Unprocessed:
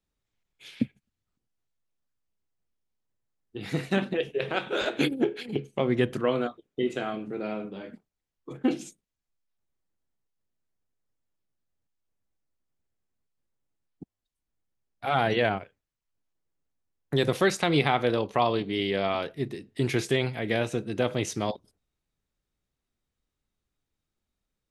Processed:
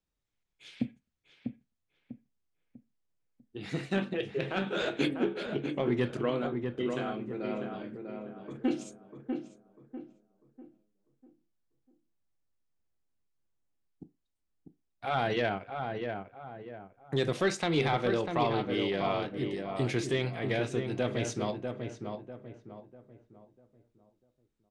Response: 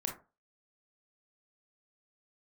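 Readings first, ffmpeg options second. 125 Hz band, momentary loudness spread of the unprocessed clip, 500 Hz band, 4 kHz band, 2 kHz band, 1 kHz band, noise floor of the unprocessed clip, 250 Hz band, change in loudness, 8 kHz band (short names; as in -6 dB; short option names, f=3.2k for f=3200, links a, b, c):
-3.0 dB, 11 LU, -3.5 dB, -5.0 dB, -4.5 dB, -4.0 dB, under -85 dBFS, -3.0 dB, -4.5 dB, -4.5 dB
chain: -filter_complex "[0:a]lowpass=f=9.1k:w=0.5412,lowpass=f=9.1k:w=1.3066,asoftclip=type=tanh:threshold=-12.5dB,asplit=2[a][b];[b]adelay=646,lowpass=f=1.6k:p=1,volume=-5dB,asplit=2[c][d];[d]adelay=646,lowpass=f=1.6k:p=1,volume=0.38,asplit=2[e][f];[f]adelay=646,lowpass=f=1.6k:p=1,volume=0.38,asplit=2[g][h];[h]adelay=646,lowpass=f=1.6k:p=1,volume=0.38,asplit=2[i][j];[j]adelay=646,lowpass=f=1.6k:p=1,volume=0.38[k];[a][c][e][g][i][k]amix=inputs=6:normalize=0,asplit=2[l][m];[1:a]atrim=start_sample=2205,asetrate=66150,aresample=44100[n];[m][n]afir=irnorm=-1:irlink=0,volume=-6dB[o];[l][o]amix=inputs=2:normalize=0,volume=-6.5dB"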